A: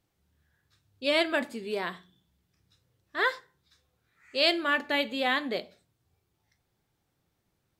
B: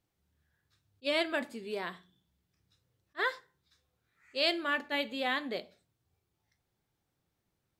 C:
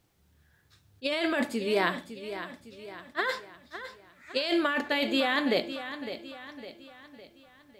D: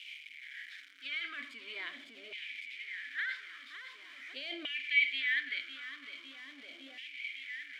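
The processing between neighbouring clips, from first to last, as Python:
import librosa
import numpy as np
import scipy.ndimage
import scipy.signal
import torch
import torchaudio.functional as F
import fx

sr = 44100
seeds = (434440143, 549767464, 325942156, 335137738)

y1 = fx.attack_slew(x, sr, db_per_s=600.0)
y1 = F.gain(torch.from_numpy(y1), -5.0).numpy()
y2 = fx.over_compress(y1, sr, threshold_db=-35.0, ratio=-1.0)
y2 = fx.echo_feedback(y2, sr, ms=557, feedback_pct=47, wet_db=-11.5)
y2 = F.gain(torch.from_numpy(y2), 8.5).numpy()
y3 = y2 + 0.5 * 10.0 ** (-30.5 / 20.0) * np.sign(y2)
y3 = fx.vowel_filter(y3, sr, vowel='i')
y3 = fx.filter_lfo_highpass(y3, sr, shape='saw_down', hz=0.43, low_hz=670.0, high_hz=2700.0, q=5.1)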